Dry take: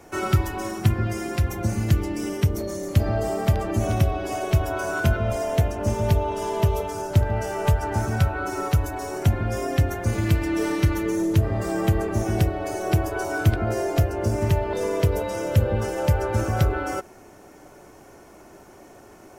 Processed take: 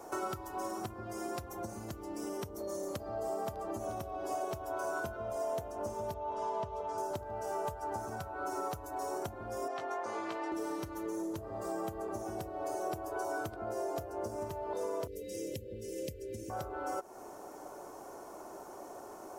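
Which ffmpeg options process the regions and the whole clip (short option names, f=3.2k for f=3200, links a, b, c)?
-filter_complex "[0:a]asettb=1/sr,asplit=3[a][b][c];[a]atrim=end=6.144[d];[b]atrim=start=6.14:end=6.98,asetpts=PTS-STARTPTS,afade=t=in:d=0.004:c=qsin,afade=t=out:st=0.836:d=0.004:c=qsin,lowpass=4.4k,equalizer=f=350:t=o:w=0.26:g=-13[e];[c]atrim=start=6.976[f];[d][e]acrossfade=d=0.004:c1=hsin:c2=qsin[g];[g][f]acrossfade=d=0.004:c1=qsin:c2=hsin,asettb=1/sr,asplit=3[h][i][j];[h]atrim=end=9.684[k];[i]atrim=start=9.68:end=10.52,asetpts=PTS-STARTPTS,afade=t=in:d=0.004:c=qsin,afade=t=out:st=0.836:d=0.004:c=qsin,highpass=550,lowpass=3.8k,asplit=2[l][m];[m]adelay=18,volume=-6dB[n];[l][n]amix=inputs=2:normalize=0,atrim=end_sample=37044[o];[j]atrim=start=10.516[p];[k][o]acrossfade=d=0.004:c1=hsin:c2=qsin[q];[q][p]acrossfade=d=0.004:c1=qsin:c2=hsin,asettb=1/sr,asplit=3[r][s][t];[r]atrim=end=15.074[u];[s]atrim=start=15.07:end=16.5,asetpts=PTS-STARTPTS,afade=t=in:d=0.004:c=qsin,afade=t=out:st=1.426:d=0.004:c=qsin,asuperstop=centerf=1000:order=12:qfactor=0.69,equalizer=f=610:t=o:w=0.9:g=-4.5[v];[t]atrim=start=16.496[w];[u][v]acrossfade=d=0.004:c1=hsin:c2=qsin[x];[x][w]acrossfade=d=0.004:c1=qsin:c2=hsin,highshelf=f=1.5k:t=q:w=1.5:g=-10,acompressor=threshold=-35dB:ratio=4,bass=f=250:g=-14,treble=f=4k:g=9,volume=1dB"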